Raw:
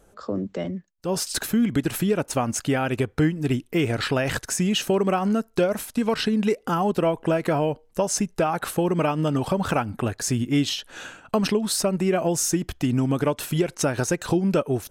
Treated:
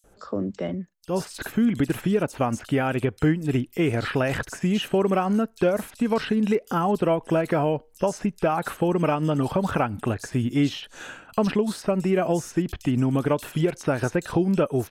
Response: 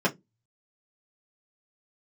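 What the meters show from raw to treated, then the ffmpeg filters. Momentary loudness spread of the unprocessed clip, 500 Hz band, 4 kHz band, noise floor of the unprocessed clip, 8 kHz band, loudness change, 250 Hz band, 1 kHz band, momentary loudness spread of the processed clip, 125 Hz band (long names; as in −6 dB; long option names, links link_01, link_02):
5 LU, 0.0 dB, −6.5 dB, −57 dBFS, −12.0 dB, −0.5 dB, 0.0 dB, 0.0 dB, 7 LU, 0.0 dB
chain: -filter_complex "[0:a]acrossover=split=3200[link_01][link_02];[link_02]acompressor=threshold=-39dB:ratio=4:attack=1:release=60[link_03];[link_01][link_03]amix=inputs=2:normalize=0,acrossover=split=3900[link_04][link_05];[link_04]adelay=40[link_06];[link_06][link_05]amix=inputs=2:normalize=0"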